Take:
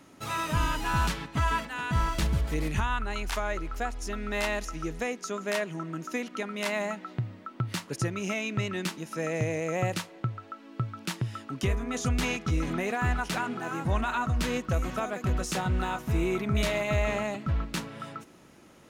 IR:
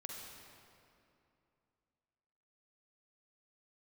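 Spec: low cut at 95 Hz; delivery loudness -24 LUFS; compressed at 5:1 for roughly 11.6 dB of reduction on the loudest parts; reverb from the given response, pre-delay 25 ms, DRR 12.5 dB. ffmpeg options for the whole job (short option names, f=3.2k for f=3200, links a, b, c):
-filter_complex "[0:a]highpass=95,acompressor=threshold=-38dB:ratio=5,asplit=2[a][b];[1:a]atrim=start_sample=2205,adelay=25[c];[b][c]afir=irnorm=-1:irlink=0,volume=-10dB[d];[a][d]amix=inputs=2:normalize=0,volume=17dB"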